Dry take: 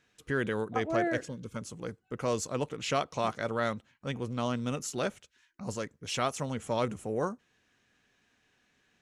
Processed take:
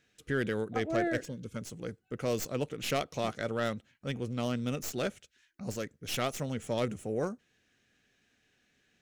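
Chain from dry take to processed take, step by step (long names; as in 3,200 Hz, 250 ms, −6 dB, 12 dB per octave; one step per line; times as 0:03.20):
stylus tracing distortion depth 0.079 ms
parametric band 1,000 Hz −9.5 dB 0.62 octaves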